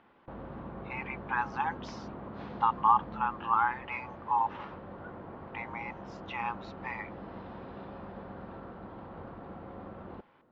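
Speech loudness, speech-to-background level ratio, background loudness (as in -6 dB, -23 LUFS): -32.0 LUFS, 13.0 dB, -45.0 LUFS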